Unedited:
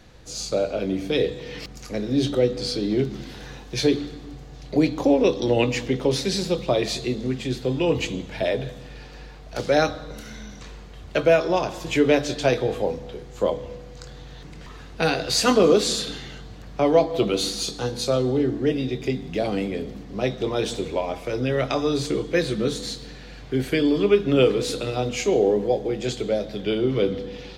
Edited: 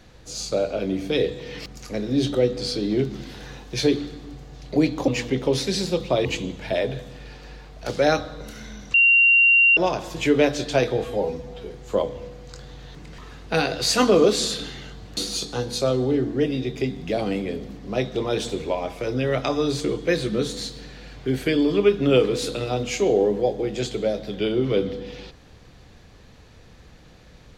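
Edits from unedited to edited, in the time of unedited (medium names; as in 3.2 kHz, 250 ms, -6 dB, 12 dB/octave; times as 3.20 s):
5.08–5.66 s: delete
6.83–7.95 s: delete
10.64–11.47 s: bleep 2.76 kHz -12 dBFS
12.74–13.18 s: stretch 1.5×
16.65–17.43 s: delete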